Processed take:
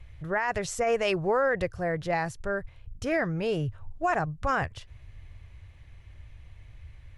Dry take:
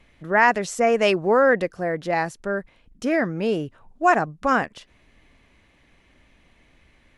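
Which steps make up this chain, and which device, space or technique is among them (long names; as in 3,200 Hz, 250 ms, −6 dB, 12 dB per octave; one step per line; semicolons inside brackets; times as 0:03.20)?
car stereo with a boomy subwoofer (low shelf with overshoot 150 Hz +14 dB, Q 3; brickwall limiter −14.5 dBFS, peak gain reduction 11 dB)
level −3 dB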